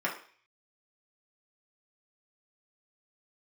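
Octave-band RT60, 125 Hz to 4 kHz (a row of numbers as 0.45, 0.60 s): 0.35, 0.40, 0.45, 0.45, 0.55, 0.55 s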